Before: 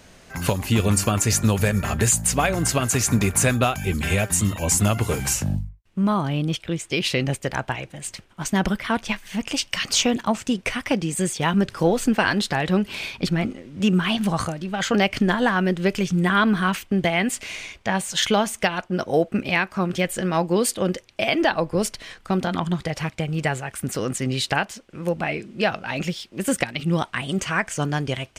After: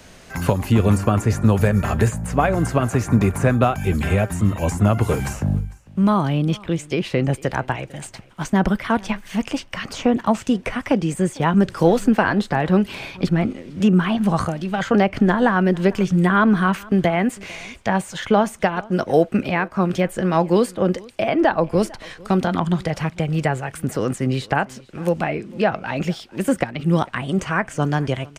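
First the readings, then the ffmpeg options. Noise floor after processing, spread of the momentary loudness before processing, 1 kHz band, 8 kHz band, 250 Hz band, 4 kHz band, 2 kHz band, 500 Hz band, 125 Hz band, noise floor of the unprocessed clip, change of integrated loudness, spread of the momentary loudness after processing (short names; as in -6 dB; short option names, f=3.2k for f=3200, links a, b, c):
-44 dBFS, 8 LU, +3.5 dB, -11.5 dB, +4.0 dB, -7.0 dB, -0.5 dB, +4.0 dB, +4.0 dB, -52 dBFS, +2.5 dB, 8 LU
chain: -filter_complex "[0:a]acrossover=split=280|1700[a][b][c];[c]acompressor=threshold=-39dB:ratio=10[d];[a][b][d]amix=inputs=3:normalize=0,aecho=1:1:450:0.0668,volume=4dB"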